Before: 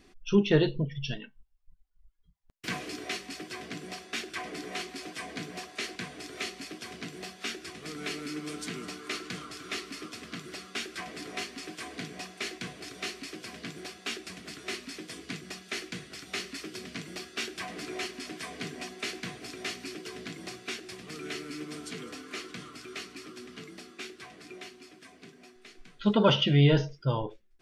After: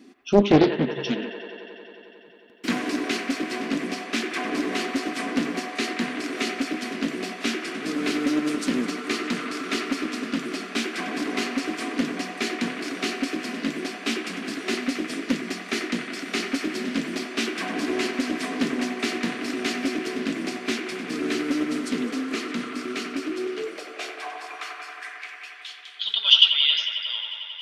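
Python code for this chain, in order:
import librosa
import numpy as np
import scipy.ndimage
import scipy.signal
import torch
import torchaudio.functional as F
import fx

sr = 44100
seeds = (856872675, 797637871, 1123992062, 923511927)

p1 = fx.rider(x, sr, range_db=4, speed_s=0.5)
p2 = x + F.gain(torch.from_numpy(p1), -1.0).numpy()
p3 = fx.filter_sweep_highpass(p2, sr, from_hz=250.0, to_hz=3300.0, start_s=23.12, end_s=25.64, q=5.3)
p4 = fx.echo_wet_bandpass(p3, sr, ms=90, feedback_pct=85, hz=1200.0, wet_db=-4.0)
p5 = fx.doppler_dist(p4, sr, depth_ms=0.8)
y = F.gain(torch.from_numpy(p5), -1.0).numpy()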